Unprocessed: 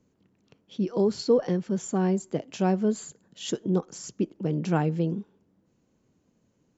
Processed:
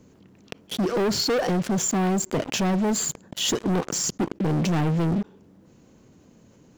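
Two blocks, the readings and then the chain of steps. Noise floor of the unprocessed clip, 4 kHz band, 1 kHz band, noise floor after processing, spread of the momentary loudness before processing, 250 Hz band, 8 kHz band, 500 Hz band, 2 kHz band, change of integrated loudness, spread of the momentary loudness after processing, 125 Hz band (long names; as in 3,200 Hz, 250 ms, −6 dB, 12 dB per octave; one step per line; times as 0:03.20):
−70 dBFS, +12.5 dB, +5.0 dB, −55 dBFS, 11 LU, +2.5 dB, can't be measured, +0.5 dB, +9.0 dB, +3.0 dB, 6 LU, +3.5 dB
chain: leveller curve on the samples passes 5
envelope flattener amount 50%
level −8.5 dB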